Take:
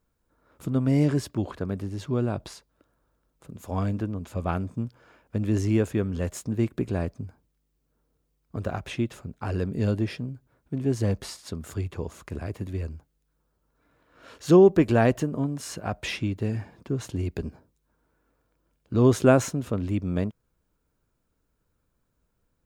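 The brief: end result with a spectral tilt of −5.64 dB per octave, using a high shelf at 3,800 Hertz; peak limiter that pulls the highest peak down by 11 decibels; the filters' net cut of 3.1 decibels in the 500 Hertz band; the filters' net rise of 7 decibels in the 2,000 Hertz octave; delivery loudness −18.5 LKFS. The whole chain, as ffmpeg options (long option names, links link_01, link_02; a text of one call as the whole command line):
ffmpeg -i in.wav -af "equalizer=frequency=500:width_type=o:gain=-5,equalizer=frequency=2000:width_type=o:gain=8.5,highshelf=frequency=3800:gain=4.5,volume=11dB,alimiter=limit=-3.5dB:level=0:latency=1" out.wav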